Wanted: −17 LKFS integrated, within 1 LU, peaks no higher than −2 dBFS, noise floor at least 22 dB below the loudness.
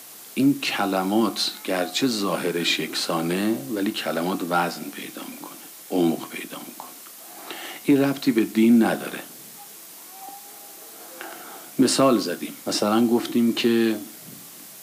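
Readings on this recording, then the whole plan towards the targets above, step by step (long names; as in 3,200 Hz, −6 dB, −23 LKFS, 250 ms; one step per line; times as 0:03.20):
background noise floor −43 dBFS; target noise floor −45 dBFS; integrated loudness −22.5 LKFS; sample peak −9.0 dBFS; target loudness −17.0 LKFS
→ broadband denoise 6 dB, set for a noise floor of −43 dBFS
level +5.5 dB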